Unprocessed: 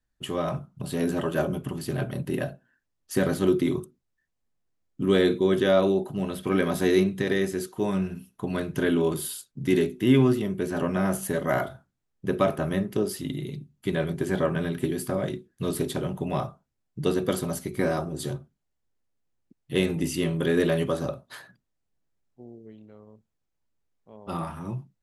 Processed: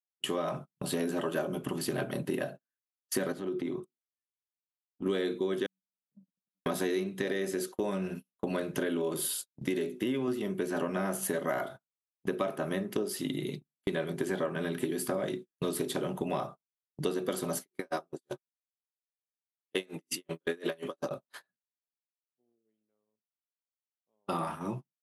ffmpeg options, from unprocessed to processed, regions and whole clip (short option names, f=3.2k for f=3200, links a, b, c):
-filter_complex "[0:a]asettb=1/sr,asplit=3[a][b][c];[a]atrim=end=3.324[d];[b]atrim=start=3.32:end=5.06,asetpts=PTS-STARTPTS,afade=t=in:d=0.004:c=qsin,afade=t=out:st=1.736:d=0.004:c=qsin,lowpass=f=2.1k:p=1,acompressor=threshold=-33dB:ratio=4:attack=3.2:release=140:knee=1:detection=peak[e];[c]atrim=start=5.056[f];[d][e]acrossfade=d=0.004:c1=hsin:c2=qsin[g];[g][f]acrossfade=d=0.004:c1=qsin:c2=hsin,asettb=1/sr,asplit=3[h][i][j];[h]atrim=end=5.664[k];[i]atrim=start=5.66:end=6.66,asetpts=PTS-STARTPTS,afade=t=in:d=0.004:c=qsin,afade=t=out:st=0.996:d=0.004:c=qsin,acompressor=threshold=-33dB:ratio=12:attack=3.2:release=140:knee=1:detection=peak,asuperpass=centerf=180:order=8:qfactor=1.6,agate=range=-35dB:threshold=-40dB:ratio=16:release=100:detection=peak[l];[j]atrim=start=6.656[m];[k][l]acrossfade=d=0.004:c1=hsin:c2=qsin[n];[n][m]acrossfade=d=0.004:c1=qsin:c2=hsin,asettb=1/sr,asplit=3[o][p][q];[o]atrim=end=7.254[r];[p]atrim=start=7.25:end=10.28,asetpts=PTS-STARTPTS,afade=t=in:d=0.004:c=qsin,afade=t=out:st=3.026:d=0.004:c=qsin,equalizer=f=550:t=o:w=0.24:g=7,acompressor=threshold=-23dB:ratio=2:attack=3.2:release=140:knee=1:detection=peak[s];[q]atrim=start=10.276[t];[r][s]acrossfade=d=0.004:c1=hsin:c2=qsin[u];[u][t]acrossfade=d=0.004:c1=qsin:c2=hsin,asettb=1/sr,asplit=3[v][w][x];[v]atrim=end=17.594[y];[w]atrim=start=17.59:end=21.11,asetpts=PTS-STARTPTS,afade=t=in:d=0.004:c=qsin,afade=t=out:st=3.516:d=0.004:c=qsin,highpass=f=320:p=1,aeval=exprs='val(0)*pow(10,-30*(0.5-0.5*cos(2*PI*5.5*n/s))/20)':c=same[z];[x]atrim=start=21.106[aa];[y][z]acrossfade=d=0.004:c1=hsin:c2=qsin[ab];[ab][aa]acrossfade=d=0.004:c1=qsin:c2=hsin,highpass=230,agate=range=-35dB:threshold=-40dB:ratio=16:detection=peak,acompressor=threshold=-32dB:ratio=6,volume=3.5dB"